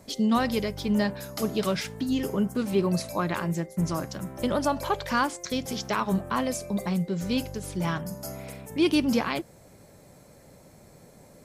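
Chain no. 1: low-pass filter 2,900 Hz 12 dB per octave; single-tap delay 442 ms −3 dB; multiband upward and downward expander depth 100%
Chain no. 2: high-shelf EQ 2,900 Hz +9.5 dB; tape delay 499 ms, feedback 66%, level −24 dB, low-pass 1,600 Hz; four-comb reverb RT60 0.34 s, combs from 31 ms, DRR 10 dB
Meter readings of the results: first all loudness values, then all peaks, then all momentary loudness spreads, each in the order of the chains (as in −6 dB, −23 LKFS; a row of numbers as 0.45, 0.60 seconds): −26.0, −26.0 LKFS; −7.0, −10.0 dBFS; 9, 7 LU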